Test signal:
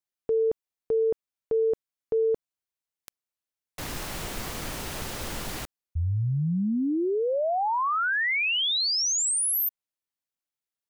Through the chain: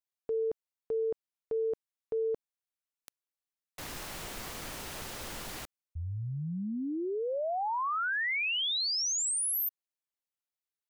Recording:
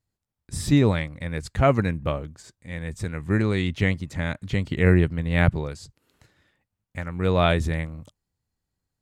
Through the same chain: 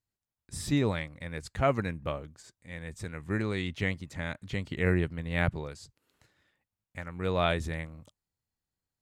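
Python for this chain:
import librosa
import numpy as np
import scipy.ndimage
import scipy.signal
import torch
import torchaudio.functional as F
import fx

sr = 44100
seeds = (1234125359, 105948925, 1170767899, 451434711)

y = fx.low_shelf(x, sr, hz=330.0, db=-5.0)
y = y * librosa.db_to_amplitude(-5.5)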